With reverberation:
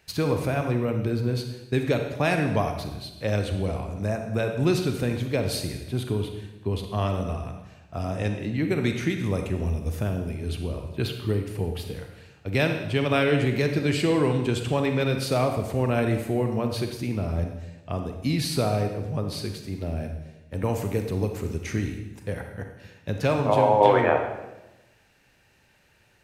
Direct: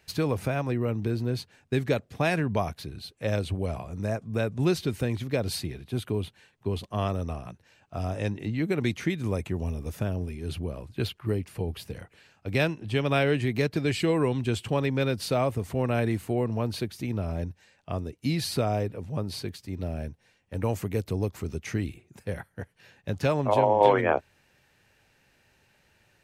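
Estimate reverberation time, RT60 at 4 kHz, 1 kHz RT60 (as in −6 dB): 1.0 s, 0.90 s, 0.95 s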